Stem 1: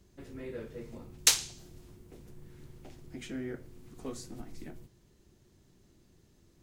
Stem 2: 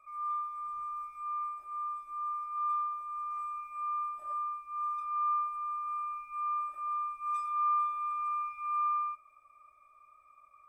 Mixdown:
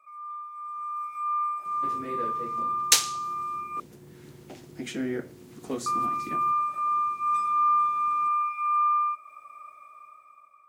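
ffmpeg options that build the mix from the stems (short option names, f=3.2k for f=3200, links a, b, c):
-filter_complex "[0:a]adelay=1650,volume=-4.5dB[a];[1:a]acompressor=threshold=-48dB:ratio=1.5,volume=1dB,asplit=3[b][c][d];[b]atrim=end=3.8,asetpts=PTS-STARTPTS,afade=t=out:st=3.796:d=0.004:c=hsin[e];[c]atrim=start=3.8:end=5.86,asetpts=PTS-STARTPTS,volume=0[f];[d]atrim=start=5.86,asetpts=PTS-STARTPTS,afade=t=in:d=0.004:c=hsin[g];[e][f][g]concat=n=3:v=0:a=1[h];[a][h]amix=inputs=2:normalize=0,highpass=160,dynaudnorm=f=270:g=7:m=13dB"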